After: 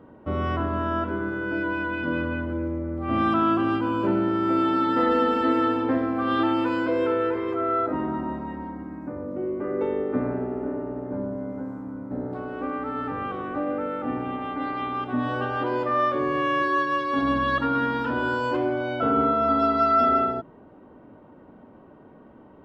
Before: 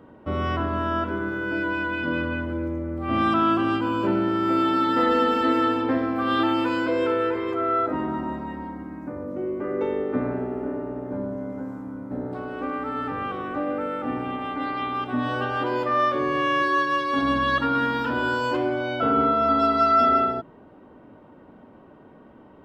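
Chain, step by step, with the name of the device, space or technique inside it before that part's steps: behind a face mask (high shelf 2600 Hz -8 dB)

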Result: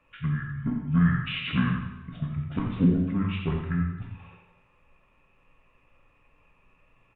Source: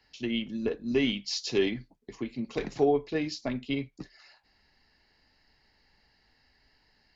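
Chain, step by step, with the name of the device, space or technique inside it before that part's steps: monster voice (pitch shift -8 st; formant shift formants -3 st; low shelf 230 Hz +5 dB; echo 87 ms -10 dB; reverb RT60 1.0 s, pre-delay 7 ms, DRR 1.5 dB)

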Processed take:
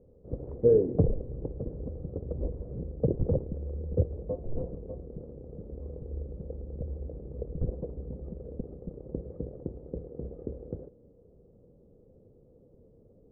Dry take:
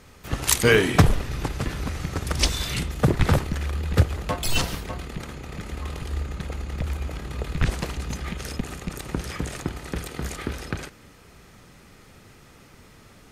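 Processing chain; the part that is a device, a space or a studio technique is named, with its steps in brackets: under water (LPF 520 Hz 24 dB/oct; bell 500 Hz +12 dB 0.51 oct); gain -8.5 dB

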